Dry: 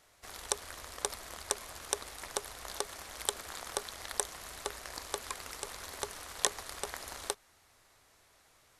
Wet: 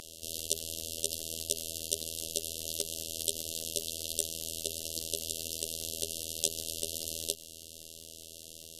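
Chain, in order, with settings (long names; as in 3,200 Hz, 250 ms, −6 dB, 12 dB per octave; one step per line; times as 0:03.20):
linear-phase brick-wall band-stop 640–2,700 Hz
phases set to zero 81.3 Hz
every bin compressed towards the loudest bin 2 to 1
level +3 dB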